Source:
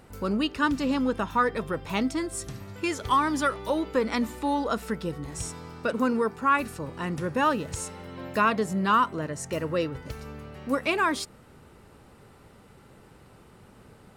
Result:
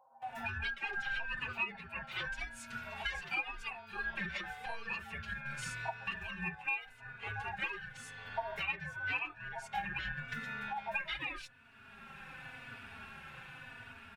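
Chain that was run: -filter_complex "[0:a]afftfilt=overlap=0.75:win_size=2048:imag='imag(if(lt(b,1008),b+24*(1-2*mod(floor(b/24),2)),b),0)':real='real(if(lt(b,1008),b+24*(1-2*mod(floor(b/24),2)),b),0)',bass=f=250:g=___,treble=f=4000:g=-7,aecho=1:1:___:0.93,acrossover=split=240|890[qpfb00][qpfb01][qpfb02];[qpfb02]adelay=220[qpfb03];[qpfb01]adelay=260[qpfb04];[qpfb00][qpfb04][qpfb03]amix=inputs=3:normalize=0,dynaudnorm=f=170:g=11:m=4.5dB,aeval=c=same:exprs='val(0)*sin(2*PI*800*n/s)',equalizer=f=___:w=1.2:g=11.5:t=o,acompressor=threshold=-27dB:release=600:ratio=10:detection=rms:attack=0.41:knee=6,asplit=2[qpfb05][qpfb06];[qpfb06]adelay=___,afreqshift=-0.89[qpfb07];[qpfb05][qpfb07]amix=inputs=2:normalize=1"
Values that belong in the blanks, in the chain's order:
1, 7.3, 2400, 3.4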